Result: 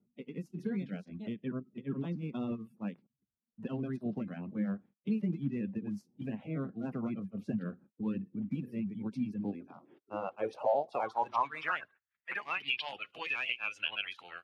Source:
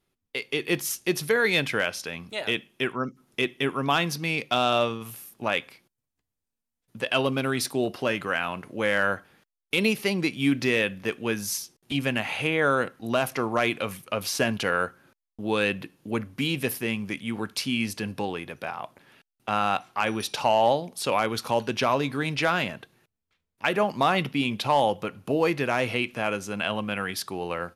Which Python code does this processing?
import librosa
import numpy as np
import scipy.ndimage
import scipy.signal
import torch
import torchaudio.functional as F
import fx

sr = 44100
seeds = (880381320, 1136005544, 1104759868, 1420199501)

p1 = fx.spec_quant(x, sr, step_db=30)
p2 = fx.level_steps(p1, sr, step_db=15)
p3 = p1 + F.gain(torch.from_numpy(p2), 0.5).numpy()
p4 = fx.stretch_grains(p3, sr, factor=0.52, grain_ms=174.0)
p5 = fx.filter_sweep_bandpass(p4, sr, from_hz=200.0, to_hz=2900.0, start_s=9.28, end_s=12.79, q=4.0)
y = fx.band_squash(p5, sr, depth_pct=40)